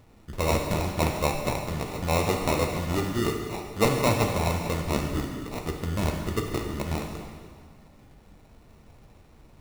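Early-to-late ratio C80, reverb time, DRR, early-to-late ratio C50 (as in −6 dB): 5.5 dB, 1.8 s, 2.0 dB, 4.0 dB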